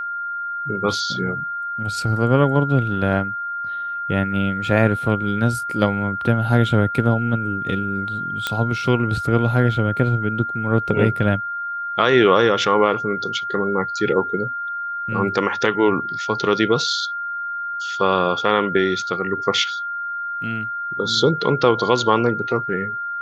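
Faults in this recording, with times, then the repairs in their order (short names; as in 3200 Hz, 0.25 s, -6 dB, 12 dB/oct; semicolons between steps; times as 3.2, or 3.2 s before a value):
tone 1400 Hz -24 dBFS
8.47 pop -7 dBFS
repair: de-click; notch 1400 Hz, Q 30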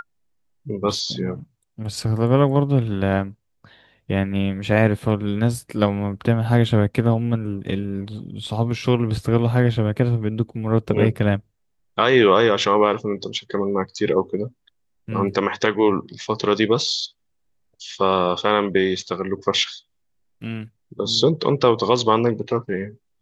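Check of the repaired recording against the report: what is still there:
none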